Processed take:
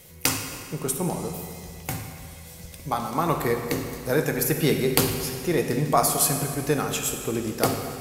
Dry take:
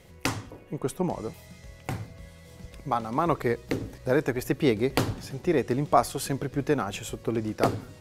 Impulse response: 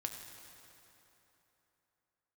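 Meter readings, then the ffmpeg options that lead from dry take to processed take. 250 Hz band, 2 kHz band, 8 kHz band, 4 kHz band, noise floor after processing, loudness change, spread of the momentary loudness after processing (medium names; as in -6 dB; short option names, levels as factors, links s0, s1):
+1.5 dB, +3.5 dB, +13.5 dB, +7.5 dB, -43 dBFS, +3.0 dB, 14 LU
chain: -filter_complex "[0:a]aemphasis=mode=production:type=75fm[s0];[1:a]atrim=start_sample=2205,asetrate=66150,aresample=44100[s1];[s0][s1]afir=irnorm=-1:irlink=0,volume=2"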